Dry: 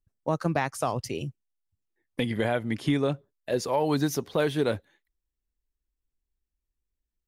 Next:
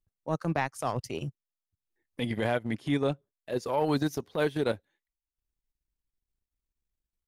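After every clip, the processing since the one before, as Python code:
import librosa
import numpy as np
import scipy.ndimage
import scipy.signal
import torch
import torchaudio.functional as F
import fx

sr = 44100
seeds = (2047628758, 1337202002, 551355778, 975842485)

y = fx.transient(x, sr, attack_db=-8, sustain_db=-12)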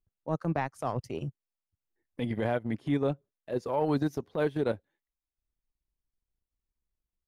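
y = fx.high_shelf(x, sr, hz=2000.0, db=-10.5)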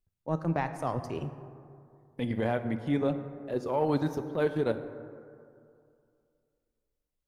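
y = fx.rev_plate(x, sr, seeds[0], rt60_s=2.4, hf_ratio=0.35, predelay_ms=0, drr_db=9.0)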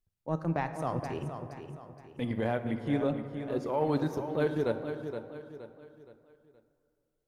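y = fx.echo_feedback(x, sr, ms=470, feedback_pct=39, wet_db=-9)
y = y * librosa.db_to_amplitude(-1.5)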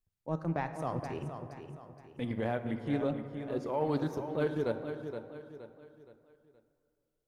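y = fx.doppler_dist(x, sr, depth_ms=0.11)
y = y * librosa.db_to_amplitude(-2.5)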